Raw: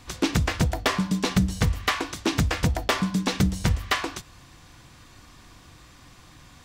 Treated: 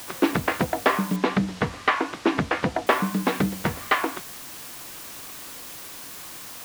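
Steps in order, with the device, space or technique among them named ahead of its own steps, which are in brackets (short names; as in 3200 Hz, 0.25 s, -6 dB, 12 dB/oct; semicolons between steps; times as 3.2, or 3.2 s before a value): wax cylinder (BPF 260–2000 Hz; wow and flutter; white noise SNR 13 dB); 1.16–2.87 LPF 5600 Hz 12 dB/oct; gain +5.5 dB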